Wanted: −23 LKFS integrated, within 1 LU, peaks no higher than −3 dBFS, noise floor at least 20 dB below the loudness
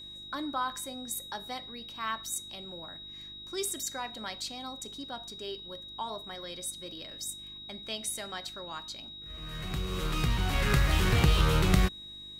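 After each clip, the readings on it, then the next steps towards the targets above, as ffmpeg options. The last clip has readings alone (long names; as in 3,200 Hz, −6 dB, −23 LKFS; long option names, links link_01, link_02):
mains hum 50 Hz; hum harmonics up to 350 Hz; level of the hum −49 dBFS; interfering tone 3,800 Hz; level of the tone −43 dBFS; integrated loudness −33.0 LKFS; sample peak −11.0 dBFS; target loudness −23.0 LKFS
→ -af "bandreject=frequency=50:width_type=h:width=4,bandreject=frequency=100:width_type=h:width=4,bandreject=frequency=150:width_type=h:width=4,bandreject=frequency=200:width_type=h:width=4,bandreject=frequency=250:width_type=h:width=4,bandreject=frequency=300:width_type=h:width=4,bandreject=frequency=350:width_type=h:width=4"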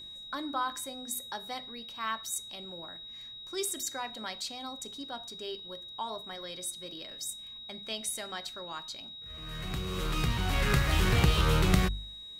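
mains hum none found; interfering tone 3,800 Hz; level of the tone −43 dBFS
→ -af "bandreject=frequency=3800:width=30"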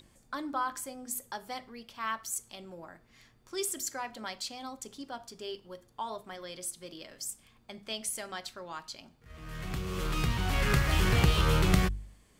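interfering tone none found; integrated loudness −33.0 LKFS; sample peak −11.5 dBFS; target loudness −23.0 LKFS
→ -af "volume=10dB,alimiter=limit=-3dB:level=0:latency=1"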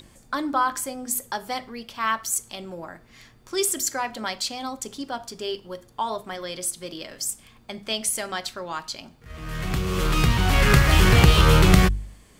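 integrated loudness −23.0 LKFS; sample peak −3.0 dBFS; background noise floor −54 dBFS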